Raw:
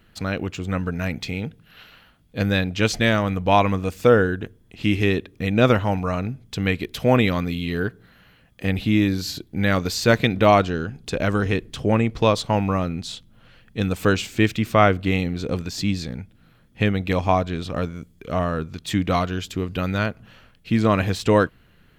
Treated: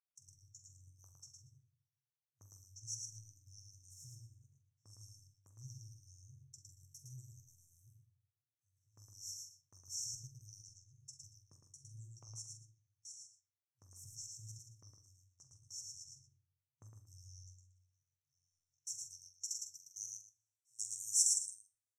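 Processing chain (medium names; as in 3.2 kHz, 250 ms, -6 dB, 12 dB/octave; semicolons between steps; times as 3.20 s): FFT band-reject 140–5400 Hz; frequency weighting A; gate with hold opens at -34 dBFS; band-pass sweep 1.2 kHz -> 8 kHz, 17.84–20.39 s; transient shaper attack -5 dB, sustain -9 dB; multi-tap echo 45/67/110/154/232 ms -11/-17/-3.5/-12/-18 dB; reverberation RT60 0.50 s, pre-delay 7 ms, DRR 8.5 dB; trim +14.5 dB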